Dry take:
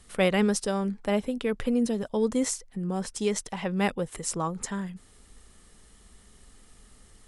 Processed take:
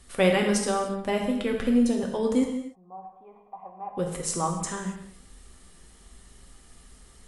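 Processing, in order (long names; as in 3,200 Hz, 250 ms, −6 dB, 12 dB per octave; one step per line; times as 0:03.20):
0:02.44–0:03.97: formant resonators in series a
reverb whose tail is shaped and stops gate 320 ms falling, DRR 1 dB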